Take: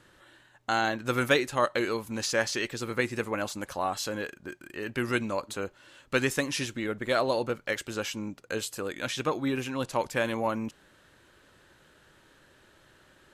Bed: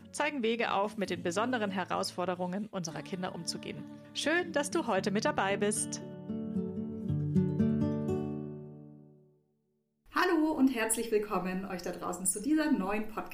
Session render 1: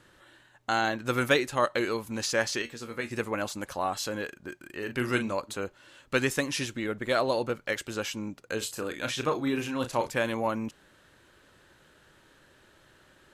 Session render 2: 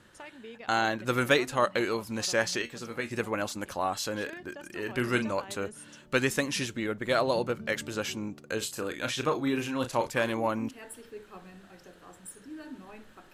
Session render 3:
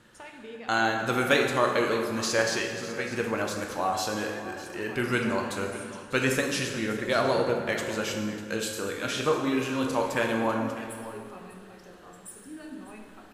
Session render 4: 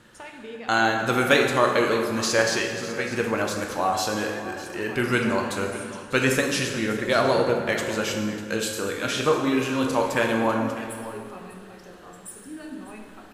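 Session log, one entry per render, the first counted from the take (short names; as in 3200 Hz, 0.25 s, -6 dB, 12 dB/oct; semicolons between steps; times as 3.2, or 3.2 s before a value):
2.62–3.11 resonator 78 Hz, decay 0.2 s, mix 80%; 4.78–5.33 doubler 40 ms -9 dB; 8.58–10.12 doubler 34 ms -8 dB
add bed -15 dB
echo 0.599 s -15.5 dB; plate-style reverb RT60 1.9 s, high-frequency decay 0.65×, DRR 1.5 dB
gain +4 dB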